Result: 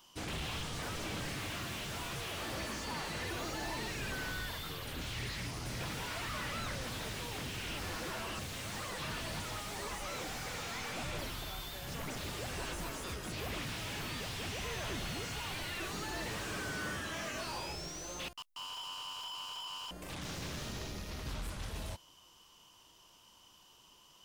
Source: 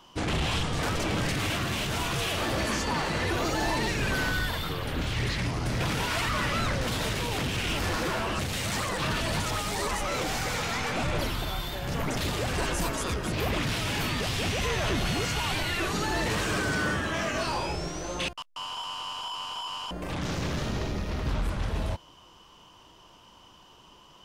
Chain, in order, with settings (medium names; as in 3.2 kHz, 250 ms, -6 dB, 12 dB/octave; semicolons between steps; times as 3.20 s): pre-emphasis filter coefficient 0.8; slew-rate limiter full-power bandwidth 27 Hz; trim +1.5 dB